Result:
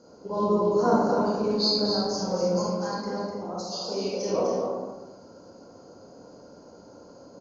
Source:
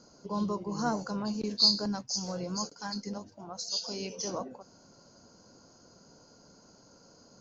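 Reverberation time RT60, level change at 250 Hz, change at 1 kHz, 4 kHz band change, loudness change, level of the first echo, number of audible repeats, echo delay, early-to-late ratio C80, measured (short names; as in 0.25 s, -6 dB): 1.1 s, +6.5 dB, +9.5 dB, 0.0 dB, +5.5 dB, -6.0 dB, 1, 0.251 s, 0.5 dB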